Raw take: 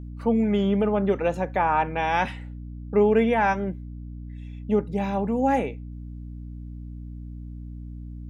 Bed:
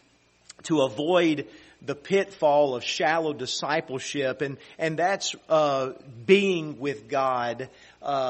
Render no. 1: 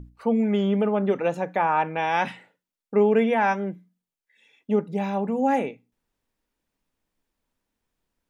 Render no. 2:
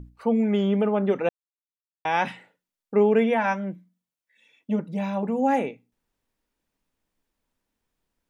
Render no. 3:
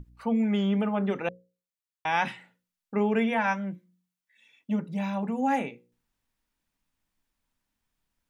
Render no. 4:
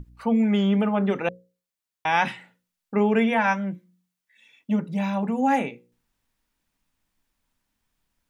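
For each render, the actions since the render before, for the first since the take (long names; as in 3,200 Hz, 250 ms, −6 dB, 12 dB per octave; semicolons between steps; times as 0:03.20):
mains-hum notches 60/120/180/240/300 Hz
0:01.29–0:02.05: silence; 0:03.37–0:05.23: notch comb filter 410 Hz
parametric band 450 Hz −8 dB 1.3 octaves; mains-hum notches 60/120/180/240/300/360/420/480/540 Hz
level +4.5 dB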